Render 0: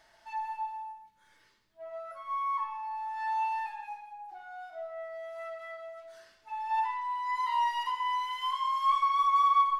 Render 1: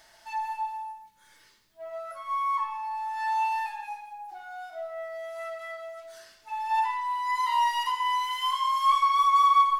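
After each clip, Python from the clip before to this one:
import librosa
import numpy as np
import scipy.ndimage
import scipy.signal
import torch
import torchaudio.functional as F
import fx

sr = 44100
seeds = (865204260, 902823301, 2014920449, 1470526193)

y = fx.high_shelf(x, sr, hz=4600.0, db=11.0)
y = y * librosa.db_to_amplitude(3.5)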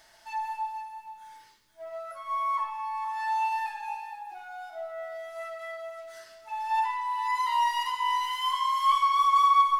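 y = x + 10.0 ** (-11.0 / 20.0) * np.pad(x, (int(473 * sr / 1000.0), 0))[:len(x)]
y = y * librosa.db_to_amplitude(-1.0)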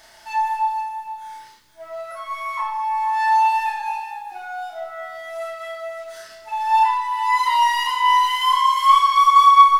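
y = fx.doubler(x, sr, ms=33.0, db=-2.0)
y = y * librosa.db_to_amplitude(7.5)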